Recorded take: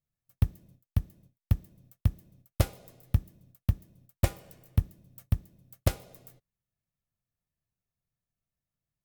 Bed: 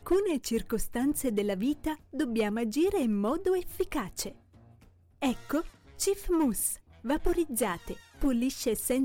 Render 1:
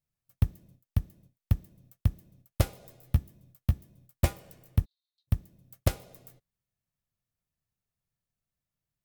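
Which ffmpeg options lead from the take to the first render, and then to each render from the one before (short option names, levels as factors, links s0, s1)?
-filter_complex "[0:a]asettb=1/sr,asplit=3[s0][s1][s2];[s0]atrim=end=2.804[s3];[s1]atrim=start=2.8:end=4.33,asetpts=PTS-STARTPTS,afade=t=in:d=0.004:c=qsin,afade=t=out:st=1.526:d=0.004:c=qsin,asplit=2[s4][s5];[s5]adelay=14,volume=0.422[s6];[s4][s6]amix=inputs=2:normalize=0,atrim=end_sample=67473[s7];[s2]atrim=start=4.326[s8];[s3][s7]acrossfade=d=0.004:c1=hsin:c2=qsin[s9];[s9][s8]acrossfade=d=0.004:c1=qsin:c2=hsin,asplit=3[s10][s11][s12];[s10]afade=t=out:st=4.84:d=0.02[s13];[s11]asuperpass=centerf=4000:order=4:qfactor=5.8,afade=t=in:st=4.84:d=0.02,afade=t=out:st=5.27:d=0.02[s14];[s12]afade=t=in:st=5.27:d=0.02[s15];[s13][s14][s15]amix=inputs=3:normalize=0"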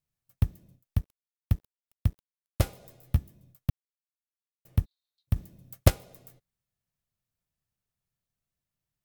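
-filter_complex "[0:a]asettb=1/sr,asplit=3[s0][s1][s2];[s0]atrim=end=1.014[s3];[s1]atrim=start=1.01:end=2.61,asetpts=PTS-STARTPTS,afade=t=in:d=0.004:c=qsin,afade=t=out:st=1.596:d=0.004:c=qsin,aeval=exprs='sgn(val(0))*max(abs(val(0))-0.00447,0)':c=same[s4];[s2]atrim=start=2.606[s5];[s3][s4]acrossfade=d=0.004:c1=hsin:c2=qsin[s6];[s6][s5]acrossfade=d=0.004:c1=qsin:c2=hsin,asplit=5[s7][s8][s9][s10][s11];[s7]atrim=end=3.7,asetpts=PTS-STARTPTS,afade=t=out:st=3.696:d=0.004:c=hsin[s12];[s8]atrim=start=3.7:end=4.65,asetpts=PTS-STARTPTS,volume=0[s13];[s9]atrim=start=4.65:end=5.362,asetpts=PTS-STARTPTS,afade=t=in:d=0.004:c=hsin[s14];[s10]atrim=start=5.358:end=5.902,asetpts=PTS-STARTPTS,volume=2[s15];[s11]atrim=start=5.898[s16];[s12][s13][s14]concat=n=3:v=0:a=1[s17];[s17][s15]acrossfade=d=0.004:c1=hsin:c2=hsin[s18];[s18][s16]acrossfade=d=0.004:c1=hsin:c2=hsin"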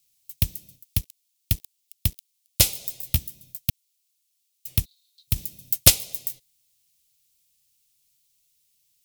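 -af "aexciter=amount=8.4:drive=6.5:freq=2300,asoftclip=type=tanh:threshold=0.794"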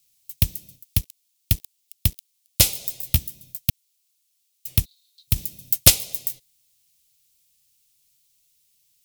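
-af "volume=1.41,alimiter=limit=0.891:level=0:latency=1"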